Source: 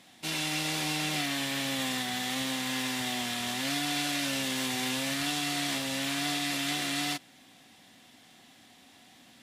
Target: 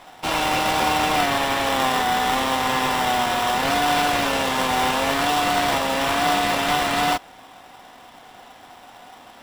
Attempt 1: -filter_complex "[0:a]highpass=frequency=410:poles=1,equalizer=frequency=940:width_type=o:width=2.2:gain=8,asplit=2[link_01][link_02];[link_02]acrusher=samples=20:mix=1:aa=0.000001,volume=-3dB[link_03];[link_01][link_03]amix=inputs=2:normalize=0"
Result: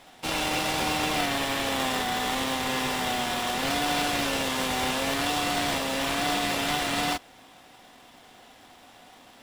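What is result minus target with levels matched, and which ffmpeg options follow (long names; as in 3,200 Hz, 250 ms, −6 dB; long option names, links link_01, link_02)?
1,000 Hz band −3.0 dB
-filter_complex "[0:a]highpass=frequency=410:poles=1,equalizer=frequency=940:width_type=o:width=2.2:gain=19,asplit=2[link_01][link_02];[link_02]acrusher=samples=20:mix=1:aa=0.000001,volume=-3dB[link_03];[link_01][link_03]amix=inputs=2:normalize=0"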